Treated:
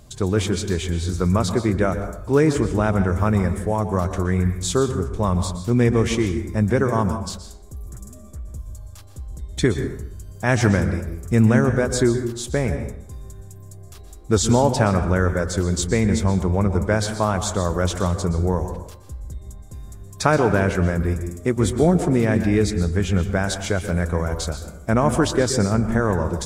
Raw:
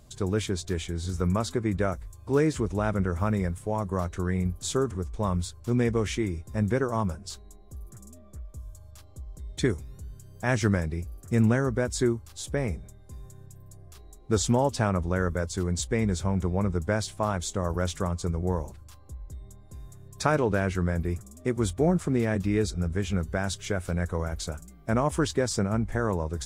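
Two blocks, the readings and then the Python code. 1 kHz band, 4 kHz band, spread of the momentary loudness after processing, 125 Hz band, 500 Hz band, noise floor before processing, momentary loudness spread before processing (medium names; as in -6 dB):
+7.0 dB, +7.0 dB, 19 LU, +7.5 dB, +7.0 dB, -50 dBFS, 20 LU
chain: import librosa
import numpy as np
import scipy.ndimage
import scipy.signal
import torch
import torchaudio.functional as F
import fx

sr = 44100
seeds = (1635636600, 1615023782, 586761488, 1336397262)

y = fx.rev_plate(x, sr, seeds[0], rt60_s=0.71, hf_ratio=0.6, predelay_ms=110, drr_db=8.5)
y = y * librosa.db_to_amplitude(6.5)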